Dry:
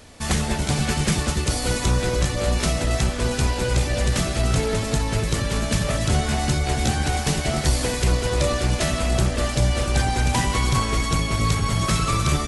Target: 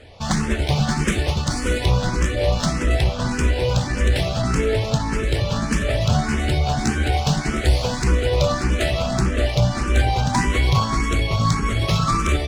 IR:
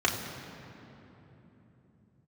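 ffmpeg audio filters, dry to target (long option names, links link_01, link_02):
-filter_complex "[0:a]adynamicsmooth=sensitivity=2:basefreq=4800,asplit=2[link_01][link_02];[link_02]afreqshift=1.7[link_03];[link_01][link_03]amix=inputs=2:normalize=1,volume=5dB"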